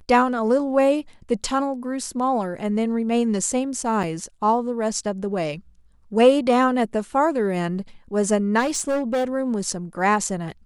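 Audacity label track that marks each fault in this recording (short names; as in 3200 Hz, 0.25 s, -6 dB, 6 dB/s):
4.030000	4.040000	gap 5.2 ms
8.590000	9.250000	clipped -18.5 dBFS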